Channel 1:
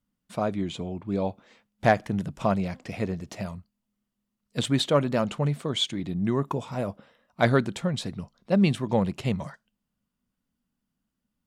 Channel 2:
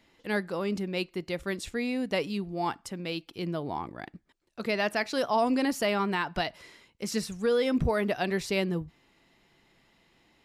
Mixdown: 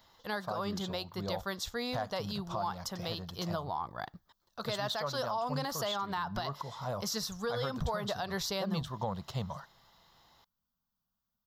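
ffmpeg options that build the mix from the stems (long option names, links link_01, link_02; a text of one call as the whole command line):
ffmpeg -i stem1.wav -i stem2.wav -filter_complex "[0:a]adelay=100,volume=-6dB[link_01];[1:a]volume=1dB[link_02];[link_01][link_02]amix=inputs=2:normalize=0,firequalizer=gain_entry='entry(120,0);entry(290,-13);entry(520,-2);entry(750,3);entry(1100,7);entry(2400,-12);entry(3400,4);entry(6000,5);entry(9000,-9);entry(14000,12)':delay=0.05:min_phase=1,alimiter=level_in=1dB:limit=-24dB:level=0:latency=1:release=200,volume=-1dB" out.wav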